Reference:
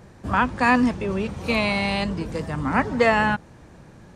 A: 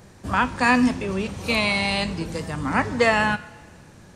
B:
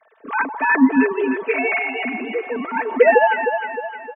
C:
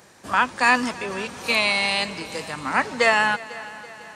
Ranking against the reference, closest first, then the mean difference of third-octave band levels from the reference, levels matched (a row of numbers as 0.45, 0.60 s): A, C, B; 3.0, 7.5, 14.0 dB